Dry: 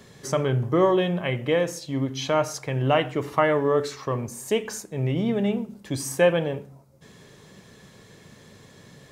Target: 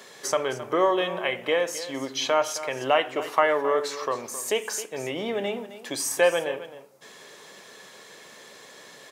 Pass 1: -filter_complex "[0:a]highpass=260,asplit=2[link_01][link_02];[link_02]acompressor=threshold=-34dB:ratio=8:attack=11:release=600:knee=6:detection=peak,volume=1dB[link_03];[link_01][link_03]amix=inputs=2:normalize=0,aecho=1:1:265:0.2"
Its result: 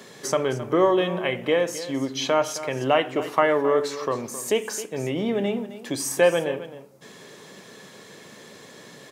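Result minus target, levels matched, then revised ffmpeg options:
250 Hz band +5.0 dB
-filter_complex "[0:a]highpass=520,asplit=2[link_01][link_02];[link_02]acompressor=threshold=-34dB:ratio=8:attack=11:release=600:knee=6:detection=peak,volume=1dB[link_03];[link_01][link_03]amix=inputs=2:normalize=0,aecho=1:1:265:0.2"

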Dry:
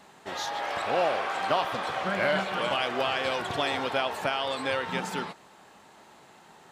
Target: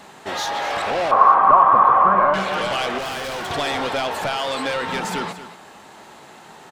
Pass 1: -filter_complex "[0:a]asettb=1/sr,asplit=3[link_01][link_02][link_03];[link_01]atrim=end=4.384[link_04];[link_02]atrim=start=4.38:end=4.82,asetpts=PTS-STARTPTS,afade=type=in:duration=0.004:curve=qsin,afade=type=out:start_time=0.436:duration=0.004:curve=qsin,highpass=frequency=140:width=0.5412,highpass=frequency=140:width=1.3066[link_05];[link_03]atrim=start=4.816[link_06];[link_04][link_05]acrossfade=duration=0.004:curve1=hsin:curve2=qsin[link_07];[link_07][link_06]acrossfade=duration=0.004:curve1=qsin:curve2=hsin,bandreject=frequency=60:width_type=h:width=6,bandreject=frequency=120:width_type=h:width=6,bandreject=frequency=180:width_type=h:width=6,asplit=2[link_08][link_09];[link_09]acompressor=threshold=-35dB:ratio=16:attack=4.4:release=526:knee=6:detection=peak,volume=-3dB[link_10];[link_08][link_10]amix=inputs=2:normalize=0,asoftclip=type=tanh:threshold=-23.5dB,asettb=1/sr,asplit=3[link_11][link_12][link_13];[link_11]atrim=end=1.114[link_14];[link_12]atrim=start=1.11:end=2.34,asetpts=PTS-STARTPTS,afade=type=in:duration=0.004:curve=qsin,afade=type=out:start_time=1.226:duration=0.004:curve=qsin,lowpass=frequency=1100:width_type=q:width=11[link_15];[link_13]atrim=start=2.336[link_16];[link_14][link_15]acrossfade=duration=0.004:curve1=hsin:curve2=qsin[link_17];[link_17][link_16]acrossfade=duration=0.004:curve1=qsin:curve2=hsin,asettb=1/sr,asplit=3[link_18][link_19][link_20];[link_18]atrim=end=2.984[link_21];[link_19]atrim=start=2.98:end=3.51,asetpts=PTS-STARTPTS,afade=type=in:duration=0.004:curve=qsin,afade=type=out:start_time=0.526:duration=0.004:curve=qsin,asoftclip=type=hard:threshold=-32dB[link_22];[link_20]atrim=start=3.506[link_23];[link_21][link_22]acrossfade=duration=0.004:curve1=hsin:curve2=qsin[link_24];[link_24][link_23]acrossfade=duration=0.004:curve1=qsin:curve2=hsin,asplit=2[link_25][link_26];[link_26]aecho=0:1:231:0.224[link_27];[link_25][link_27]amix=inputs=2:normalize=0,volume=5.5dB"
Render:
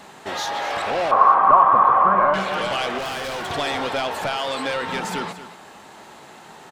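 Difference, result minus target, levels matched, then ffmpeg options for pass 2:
downward compressor: peak gain reduction +10 dB
-filter_complex "[0:a]asettb=1/sr,asplit=3[link_01][link_02][link_03];[link_01]atrim=end=4.384[link_04];[link_02]atrim=start=4.38:end=4.82,asetpts=PTS-STARTPTS,afade=type=in:duration=0.004:curve=qsin,afade=type=out:start_time=0.436:duration=0.004:curve=qsin,highpass=frequency=140:width=0.5412,highpass=frequency=140:width=1.3066[link_05];[link_03]atrim=start=4.816[link_06];[link_04][link_05]acrossfade=duration=0.004:curve1=hsin:curve2=qsin[link_07];[link_07][link_06]acrossfade=duration=0.004:curve1=qsin:curve2=hsin,bandreject=frequency=60:width_type=h:width=6,bandreject=frequency=120:width_type=h:width=6,bandreject=frequency=180:width_type=h:width=6,asplit=2[link_08][link_09];[link_09]acompressor=threshold=-24.5dB:ratio=16:attack=4.4:release=526:knee=6:detection=peak,volume=-3dB[link_10];[link_08][link_10]amix=inputs=2:normalize=0,asoftclip=type=tanh:threshold=-23.5dB,asettb=1/sr,asplit=3[link_11][link_12][link_13];[link_11]atrim=end=1.114[link_14];[link_12]atrim=start=1.11:end=2.34,asetpts=PTS-STARTPTS,afade=type=in:duration=0.004:curve=qsin,afade=type=out:start_time=1.226:duration=0.004:curve=qsin,lowpass=frequency=1100:width_type=q:width=11[link_15];[link_13]atrim=start=2.336[link_16];[link_14][link_15]acrossfade=duration=0.004:curve1=hsin:curve2=qsin[link_17];[link_17][link_16]acrossfade=duration=0.004:curve1=qsin:curve2=hsin,asettb=1/sr,asplit=3[link_18][link_19][link_20];[link_18]atrim=end=2.984[link_21];[link_19]atrim=start=2.98:end=3.51,asetpts=PTS-STARTPTS,afade=type=in:duration=0.004:curve=qsin,afade=type=out:start_time=0.526:duration=0.004:curve=qsin,asoftclip=type=hard:threshold=-32dB[link_22];[link_20]atrim=start=3.506[link_23];[link_21][link_22]acrossfade=duration=0.004:curve1=hsin:curve2=qsin[link_24];[link_24][link_23]acrossfade=duration=0.004:curve1=qsin:curve2=hsin,asplit=2[link_25][link_26];[link_26]aecho=0:1:231:0.224[link_27];[link_25][link_27]amix=inputs=2:normalize=0,volume=5.5dB"

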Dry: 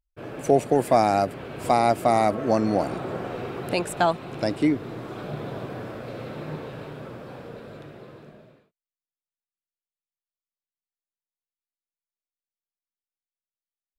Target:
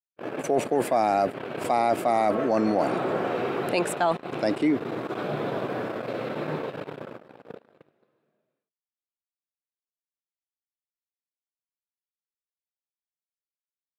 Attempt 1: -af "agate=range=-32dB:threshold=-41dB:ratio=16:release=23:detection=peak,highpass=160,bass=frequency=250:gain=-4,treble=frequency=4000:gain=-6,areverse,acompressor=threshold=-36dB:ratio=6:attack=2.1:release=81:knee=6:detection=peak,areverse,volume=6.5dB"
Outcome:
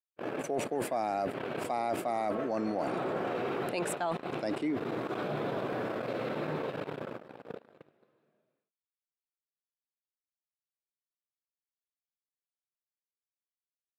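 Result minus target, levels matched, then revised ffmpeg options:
downward compressor: peak gain reduction +9.5 dB
-af "agate=range=-32dB:threshold=-41dB:ratio=16:release=23:detection=peak,highpass=160,bass=frequency=250:gain=-4,treble=frequency=4000:gain=-6,areverse,acompressor=threshold=-24.5dB:ratio=6:attack=2.1:release=81:knee=6:detection=peak,areverse,volume=6.5dB"

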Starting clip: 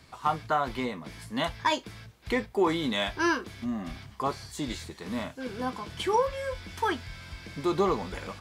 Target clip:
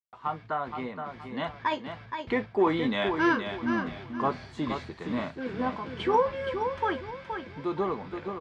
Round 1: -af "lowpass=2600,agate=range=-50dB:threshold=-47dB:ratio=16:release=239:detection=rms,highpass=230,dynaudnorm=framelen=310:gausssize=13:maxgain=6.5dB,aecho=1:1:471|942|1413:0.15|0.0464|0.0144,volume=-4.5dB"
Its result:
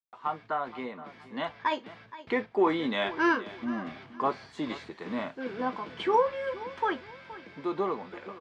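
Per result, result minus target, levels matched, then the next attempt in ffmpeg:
125 Hz band −7.5 dB; echo-to-direct −9.5 dB
-af "lowpass=2600,agate=range=-50dB:threshold=-47dB:ratio=16:release=239:detection=rms,highpass=94,dynaudnorm=framelen=310:gausssize=13:maxgain=6.5dB,aecho=1:1:471|942|1413:0.15|0.0464|0.0144,volume=-4.5dB"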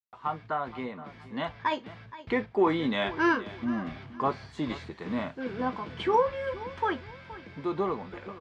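echo-to-direct −9.5 dB
-af "lowpass=2600,agate=range=-50dB:threshold=-47dB:ratio=16:release=239:detection=rms,highpass=94,dynaudnorm=framelen=310:gausssize=13:maxgain=6.5dB,aecho=1:1:471|942|1413|1884:0.447|0.138|0.0429|0.0133,volume=-4.5dB"

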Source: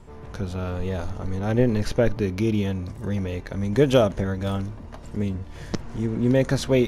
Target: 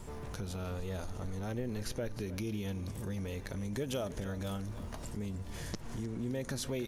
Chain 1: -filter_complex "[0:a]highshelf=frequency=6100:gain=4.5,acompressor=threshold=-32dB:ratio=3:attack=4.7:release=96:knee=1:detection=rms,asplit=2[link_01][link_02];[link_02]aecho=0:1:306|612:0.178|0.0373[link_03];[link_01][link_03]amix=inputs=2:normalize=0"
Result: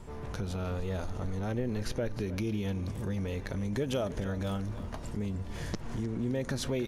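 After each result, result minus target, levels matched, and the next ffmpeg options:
8,000 Hz band −5.0 dB; downward compressor: peak gain reduction −5 dB
-filter_complex "[0:a]highshelf=frequency=6100:gain=15.5,acompressor=threshold=-32dB:ratio=3:attack=4.7:release=96:knee=1:detection=rms,asplit=2[link_01][link_02];[link_02]aecho=0:1:306|612:0.178|0.0373[link_03];[link_01][link_03]amix=inputs=2:normalize=0"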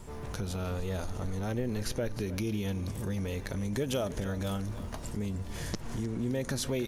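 downward compressor: peak gain reduction −4.5 dB
-filter_complex "[0:a]highshelf=frequency=6100:gain=15.5,acompressor=threshold=-39dB:ratio=3:attack=4.7:release=96:knee=1:detection=rms,asplit=2[link_01][link_02];[link_02]aecho=0:1:306|612:0.178|0.0373[link_03];[link_01][link_03]amix=inputs=2:normalize=0"

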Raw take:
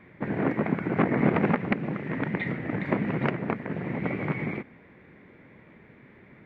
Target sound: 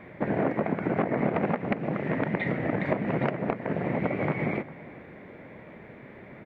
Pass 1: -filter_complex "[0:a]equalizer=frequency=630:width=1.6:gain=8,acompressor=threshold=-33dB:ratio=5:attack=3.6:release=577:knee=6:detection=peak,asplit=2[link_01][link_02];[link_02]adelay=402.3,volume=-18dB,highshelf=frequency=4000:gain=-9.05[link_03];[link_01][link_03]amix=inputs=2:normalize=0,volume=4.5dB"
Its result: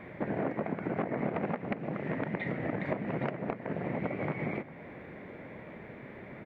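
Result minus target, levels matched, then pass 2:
downward compressor: peak gain reduction +6.5 dB
-filter_complex "[0:a]equalizer=frequency=630:width=1.6:gain=8,acompressor=threshold=-25dB:ratio=5:attack=3.6:release=577:knee=6:detection=peak,asplit=2[link_01][link_02];[link_02]adelay=402.3,volume=-18dB,highshelf=frequency=4000:gain=-9.05[link_03];[link_01][link_03]amix=inputs=2:normalize=0,volume=4.5dB"

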